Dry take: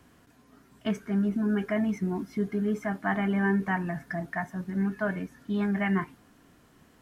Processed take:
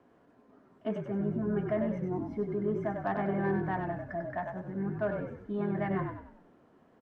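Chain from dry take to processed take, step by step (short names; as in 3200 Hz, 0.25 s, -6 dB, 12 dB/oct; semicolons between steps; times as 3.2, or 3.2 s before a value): band-pass 520 Hz, Q 1.1; added harmonics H 5 -28 dB, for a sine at -19.5 dBFS; frequency-shifting echo 96 ms, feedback 41%, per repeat -41 Hz, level -5 dB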